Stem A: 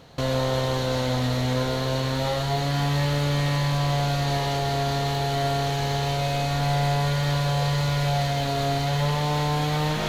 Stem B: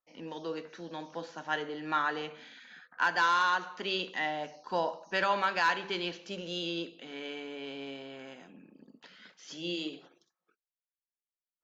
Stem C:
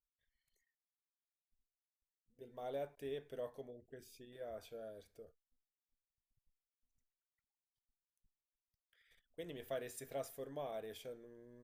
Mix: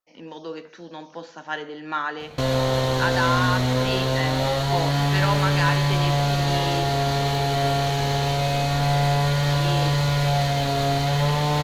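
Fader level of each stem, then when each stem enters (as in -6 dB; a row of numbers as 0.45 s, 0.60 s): +2.5 dB, +3.0 dB, mute; 2.20 s, 0.00 s, mute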